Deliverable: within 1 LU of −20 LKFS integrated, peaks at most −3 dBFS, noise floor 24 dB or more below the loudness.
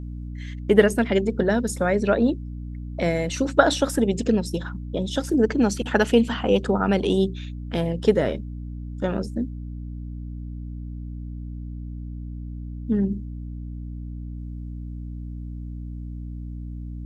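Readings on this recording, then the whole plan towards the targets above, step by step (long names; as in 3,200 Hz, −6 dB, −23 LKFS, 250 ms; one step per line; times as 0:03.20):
mains hum 60 Hz; hum harmonics up to 300 Hz; level of the hum −31 dBFS; integrated loudness −23.0 LKFS; sample peak −1.0 dBFS; target loudness −20.0 LKFS
→ hum removal 60 Hz, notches 5
level +3 dB
brickwall limiter −3 dBFS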